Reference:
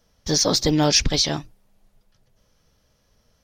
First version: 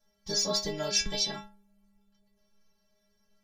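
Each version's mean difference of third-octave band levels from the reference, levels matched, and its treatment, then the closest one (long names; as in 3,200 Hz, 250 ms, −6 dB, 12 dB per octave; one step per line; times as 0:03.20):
6.0 dB: stiff-string resonator 200 Hz, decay 0.41 s, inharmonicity 0.008
level +5 dB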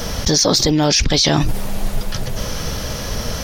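4.0 dB: envelope flattener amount 100%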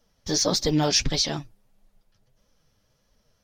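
1.0 dB: flanger 1.6 Hz, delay 3.2 ms, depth 7.3 ms, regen +38%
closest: third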